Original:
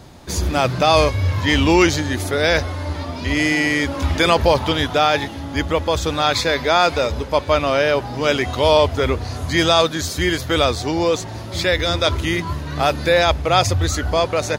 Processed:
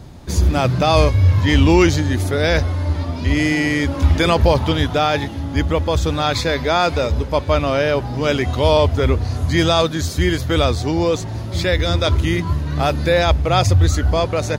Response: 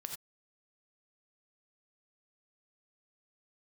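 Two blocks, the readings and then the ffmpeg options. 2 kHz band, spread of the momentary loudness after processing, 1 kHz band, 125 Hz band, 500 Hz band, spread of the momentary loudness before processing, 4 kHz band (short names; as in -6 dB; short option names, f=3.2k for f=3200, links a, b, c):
-2.5 dB, 6 LU, -1.5 dB, +6.0 dB, -0.5 dB, 7 LU, -2.5 dB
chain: -af "lowshelf=f=270:g=10,volume=-2.5dB"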